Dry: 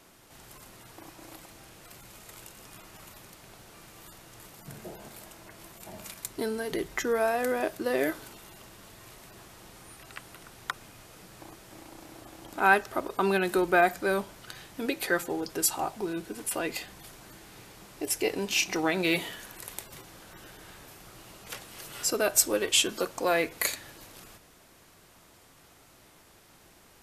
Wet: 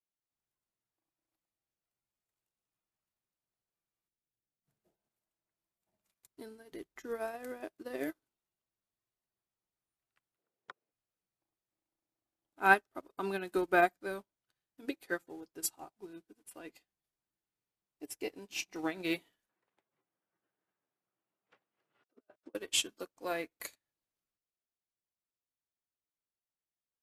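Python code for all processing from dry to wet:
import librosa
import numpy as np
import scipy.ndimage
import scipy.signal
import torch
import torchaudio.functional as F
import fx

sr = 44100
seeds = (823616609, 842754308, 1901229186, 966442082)

y = fx.chain(x, sr, fx.median_filter(points=41),
    fx.peak_eq(hz=1400.0, db=5.0, octaves=0.98),
    fx.transformer_sat(knee_hz=110.0), at=(4.08, 4.64))
y = fx.chain(y, sr, fx.bandpass_edges(low_hz=130.0, high_hz=4000.0),
    fx.peak_eq(hz=470.0, db=13.0, octaves=1.1), at=(10.38, 10.92))
y = fx.chain(y, sr, fx.over_compress(threshold_db=-35.0, ratio=-0.5),
    fx.bandpass_edges(low_hz=180.0, high_hz=2100.0), at=(19.49, 22.55))
y = fx.dynamic_eq(y, sr, hz=290.0, q=3.1, threshold_db=-48.0, ratio=4.0, max_db=6)
y = fx.upward_expand(y, sr, threshold_db=-47.0, expansion=2.5)
y = y * 10.0 ** (-1.5 / 20.0)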